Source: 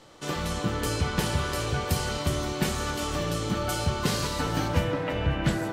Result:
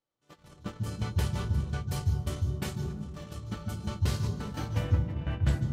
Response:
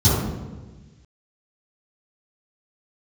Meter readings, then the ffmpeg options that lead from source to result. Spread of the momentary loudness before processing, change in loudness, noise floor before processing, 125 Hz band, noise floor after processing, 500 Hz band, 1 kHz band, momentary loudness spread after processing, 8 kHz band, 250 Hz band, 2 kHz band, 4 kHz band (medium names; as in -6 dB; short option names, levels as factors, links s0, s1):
3 LU, -4.0 dB, -33 dBFS, 0.0 dB, -67 dBFS, -12.0 dB, -12.5 dB, 10 LU, -12.0 dB, -7.0 dB, -12.5 dB, -12.5 dB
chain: -filter_complex "[0:a]agate=range=0.0316:threshold=0.0501:ratio=16:detection=peak,asplit=2[s0][s1];[1:a]atrim=start_sample=2205,adelay=140[s2];[s1][s2]afir=irnorm=-1:irlink=0,volume=0.0376[s3];[s0][s3]amix=inputs=2:normalize=0,volume=0.398"